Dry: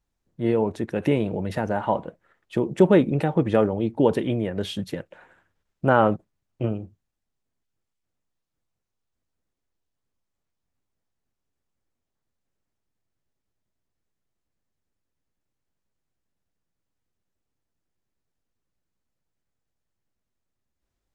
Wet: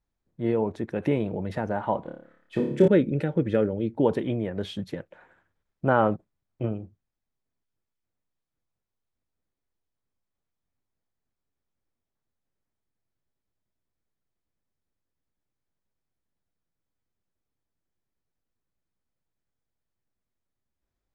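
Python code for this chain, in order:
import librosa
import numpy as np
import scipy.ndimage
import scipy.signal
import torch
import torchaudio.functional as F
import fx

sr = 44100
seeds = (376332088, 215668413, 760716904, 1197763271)

y = fx.high_shelf(x, sr, hz=6300.0, db=-11.0)
y = fx.room_flutter(y, sr, wall_m=4.9, rt60_s=0.57, at=(2.02, 2.88))
y = fx.spec_box(y, sr, start_s=2.59, length_s=1.38, low_hz=610.0, high_hz=1300.0, gain_db=-10)
y = fx.notch(y, sr, hz=2800.0, q=16.0)
y = y * 10.0 ** (-3.0 / 20.0)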